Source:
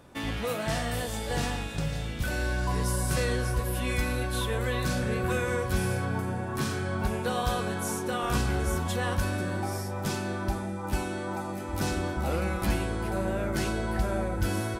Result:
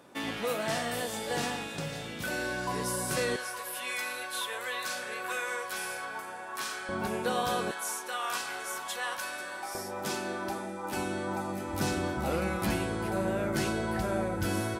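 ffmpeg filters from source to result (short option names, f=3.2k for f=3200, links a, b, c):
-af "asetnsamples=n=441:p=0,asendcmd='3.36 highpass f 810;6.89 highpass f 210;7.71 highpass f 870;9.75 highpass f 290;10.97 highpass f 110',highpass=220"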